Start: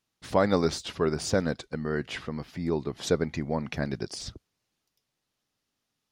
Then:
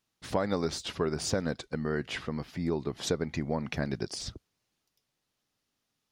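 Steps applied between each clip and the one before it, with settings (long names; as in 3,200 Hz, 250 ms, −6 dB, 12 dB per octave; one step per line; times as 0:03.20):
downward compressor 6 to 1, threshold −25 dBFS, peak gain reduction 7.5 dB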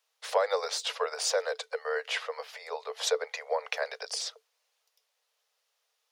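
Chebyshev high-pass filter 440 Hz, order 10
level +5 dB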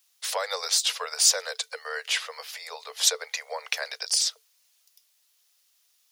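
spectral tilt +5 dB per octave
level −1.5 dB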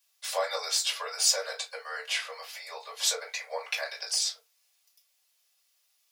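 convolution reverb, pre-delay 3 ms, DRR −4.5 dB
level −9 dB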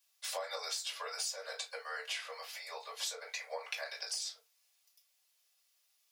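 downward compressor 10 to 1, threshold −32 dBFS, peak gain reduction 14 dB
level −3.5 dB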